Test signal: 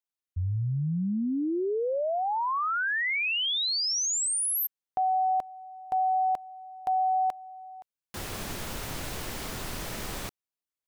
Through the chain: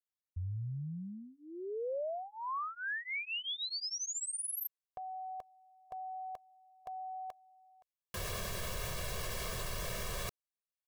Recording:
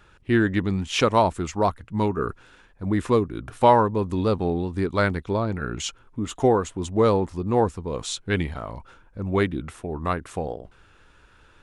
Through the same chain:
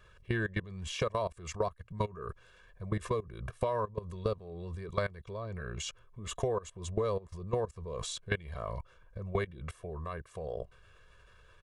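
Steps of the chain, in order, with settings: level quantiser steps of 21 dB; comb 1.8 ms, depth 98%; compressor 8:1, threshold -29 dBFS

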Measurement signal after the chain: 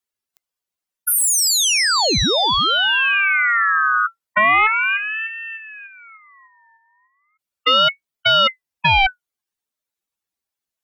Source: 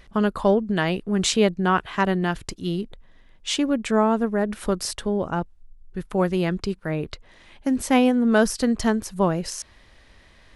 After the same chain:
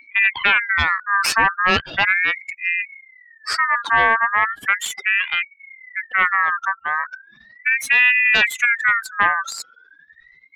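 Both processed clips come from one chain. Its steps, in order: spectral contrast raised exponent 2.5; added harmonics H 4 -6 dB, 5 -8 dB, 7 -17 dB, 8 -43 dB, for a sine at -7.5 dBFS; ring modulator with a swept carrier 1800 Hz, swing 25%, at 0.37 Hz

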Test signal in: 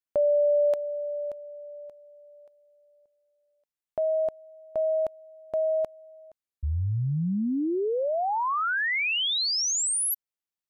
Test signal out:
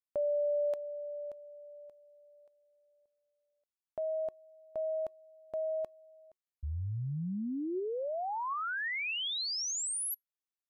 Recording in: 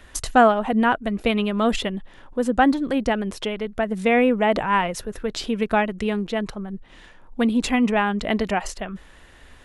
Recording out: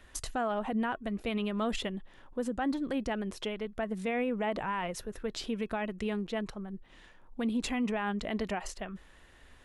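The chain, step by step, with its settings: limiter -15 dBFS; resonator 370 Hz, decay 0.16 s, harmonics odd, mix 30%; gain -6 dB

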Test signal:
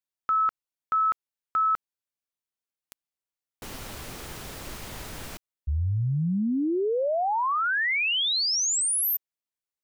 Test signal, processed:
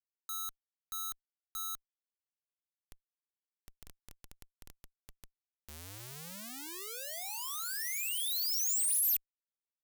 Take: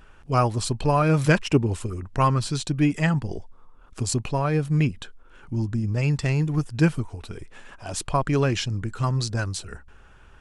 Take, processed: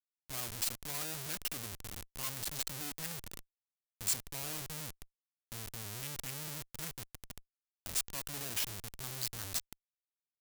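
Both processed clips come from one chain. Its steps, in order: Schmitt trigger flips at -28.5 dBFS; pre-emphasis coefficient 0.9; gain -3.5 dB

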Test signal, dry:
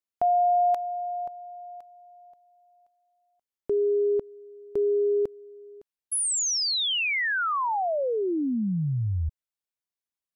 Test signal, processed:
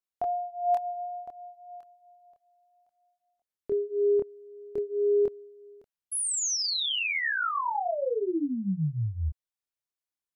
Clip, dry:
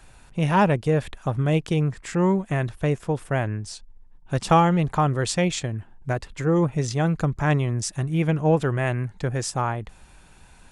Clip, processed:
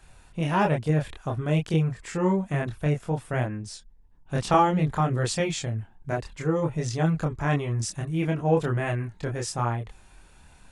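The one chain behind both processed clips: chorus voices 2, 0.57 Hz, delay 26 ms, depth 1.6 ms

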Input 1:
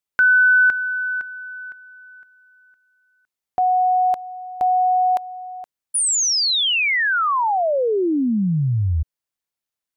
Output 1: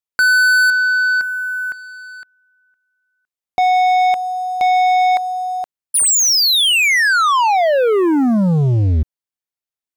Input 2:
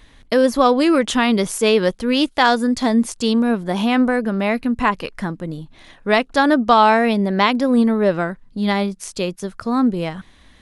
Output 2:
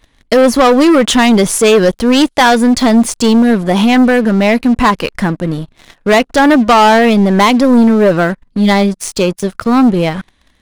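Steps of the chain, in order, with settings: sample leveller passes 3

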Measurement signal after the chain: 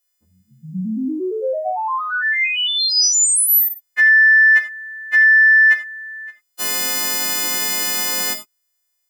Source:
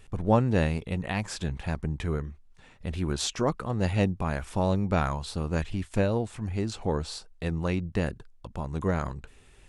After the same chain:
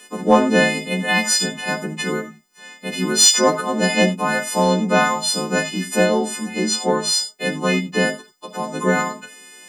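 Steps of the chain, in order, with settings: frequency quantiser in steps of 3 st; elliptic high-pass 180 Hz, stop band 40 dB; in parallel at -4 dB: soft clip -19.5 dBFS; on the sum: non-linear reverb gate 0.11 s flat, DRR 7.5 dB; gain +6 dB

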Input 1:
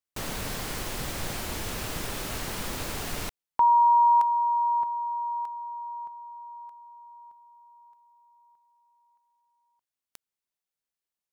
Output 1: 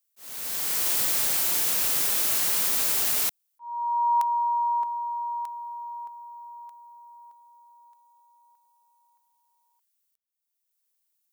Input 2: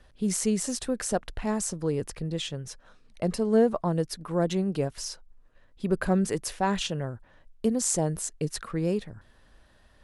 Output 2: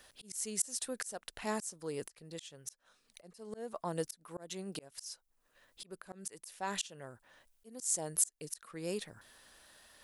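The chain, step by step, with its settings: RIAA curve recording; auto swell 0.746 s

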